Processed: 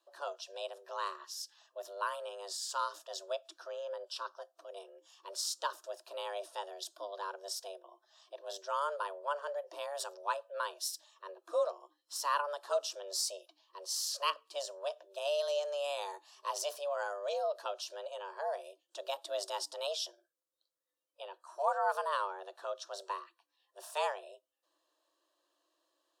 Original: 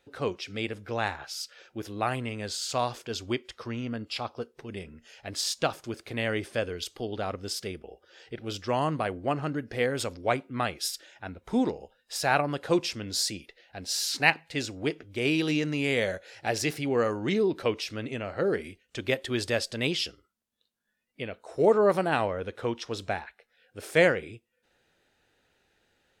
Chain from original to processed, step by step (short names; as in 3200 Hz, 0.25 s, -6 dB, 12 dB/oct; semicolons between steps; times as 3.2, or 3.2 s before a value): fixed phaser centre 490 Hz, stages 6; frequency shift +290 Hz; gain -5 dB